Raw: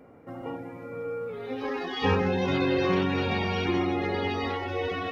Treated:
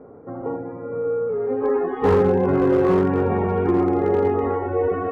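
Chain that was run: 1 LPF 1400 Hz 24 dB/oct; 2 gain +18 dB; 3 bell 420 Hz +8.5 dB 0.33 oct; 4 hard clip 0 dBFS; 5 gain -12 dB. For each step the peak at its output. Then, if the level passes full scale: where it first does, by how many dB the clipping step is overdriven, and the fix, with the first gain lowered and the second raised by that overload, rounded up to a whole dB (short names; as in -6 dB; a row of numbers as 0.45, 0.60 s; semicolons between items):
-13.0, +5.0, +8.5, 0.0, -12.0 dBFS; step 2, 8.5 dB; step 2 +9 dB, step 5 -3 dB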